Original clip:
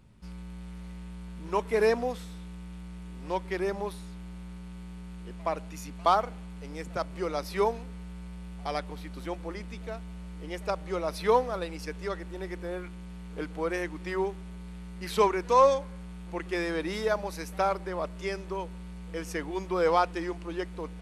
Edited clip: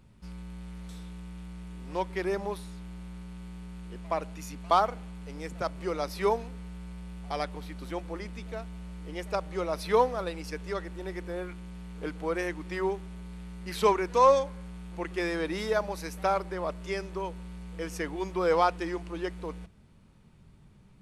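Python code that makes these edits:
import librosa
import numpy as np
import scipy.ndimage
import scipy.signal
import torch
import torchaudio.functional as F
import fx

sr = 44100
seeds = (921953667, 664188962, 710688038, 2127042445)

y = fx.edit(x, sr, fx.cut(start_s=0.89, length_s=1.35), tone=tone)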